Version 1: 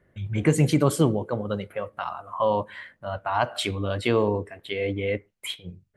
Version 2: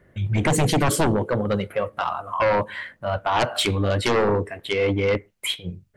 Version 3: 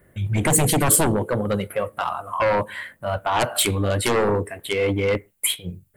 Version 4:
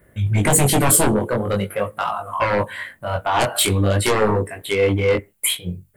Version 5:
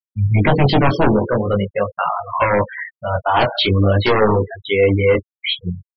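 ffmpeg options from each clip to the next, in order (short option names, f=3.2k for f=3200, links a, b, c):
-af "aeval=exprs='0.422*sin(PI/2*3.55*val(0)/0.422)':c=same,volume=-7.5dB"
-af "aexciter=amount=3.1:drive=9:freq=7.9k"
-af "flanger=delay=18.5:depth=4.6:speed=0.46,volume=5.5dB"
-af "afftfilt=real='re*gte(hypot(re,im),0.0708)':imag='im*gte(hypot(re,im),0.0708)':win_size=1024:overlap=0.75,aresample=11025,aresample=44100,volume=3.5dB"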